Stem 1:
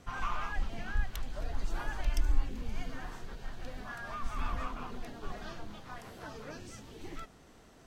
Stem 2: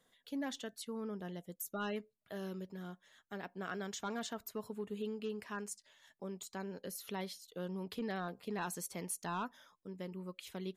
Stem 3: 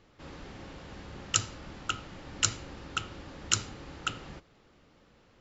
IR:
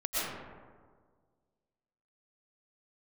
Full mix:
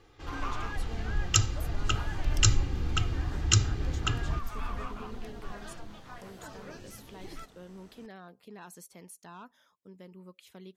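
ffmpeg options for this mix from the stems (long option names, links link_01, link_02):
-filter_complex "[0:a]adelay=200,volume=-1dB[link_01];[1:a]highpass=52,alimiter=level_in=11dB:limit=-24dB:level=0:latency=1:release=272,volume=-11dB,volume=-4dB[link_02];[2:a]aecho=1:1:2.5:0.65,asubboost=boost=7.5:cutoff=210,volume=0.5dB[link_03];[link_01][link_02][link_03]amix=inputs=3:normalize=0"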